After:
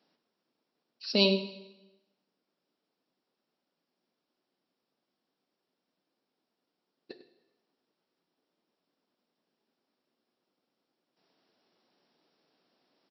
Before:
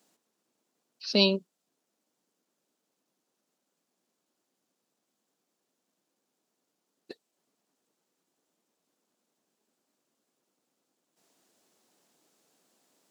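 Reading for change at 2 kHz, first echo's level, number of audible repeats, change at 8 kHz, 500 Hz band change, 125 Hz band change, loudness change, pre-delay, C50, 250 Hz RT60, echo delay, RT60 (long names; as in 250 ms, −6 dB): −1.0 dB, −14.0 dB, 1, can't be measured, −0.5 dB, −1.0 dB, −0.5 dB, 6 ms, 10.0 dB, 1.0 s, 99 ms, 1.0 s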